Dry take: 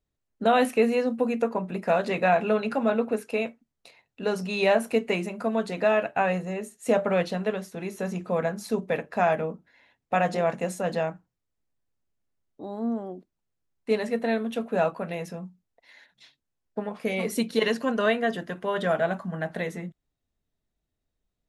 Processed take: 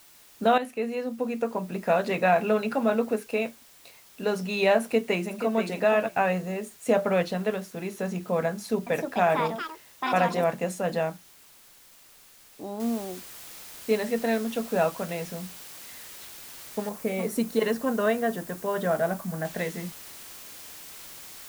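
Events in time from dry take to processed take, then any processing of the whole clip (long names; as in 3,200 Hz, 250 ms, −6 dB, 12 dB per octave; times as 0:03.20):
0:00.58–0:01.91: fade in, from −12 dB
0:04.82–0:05.60: delay throw 480 ms, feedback 10%, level −8.5 dB
0:08.49–0:10.72: delay with pitch and tempo change per echo 376 ms, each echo +6 semitones, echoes 2, each echo −6 dB
0:12.80: noise floor change −54 dB −44 dB
0:16.89–0:19.45: parametric band 3,200 Hz −8 dB 1.8 octaves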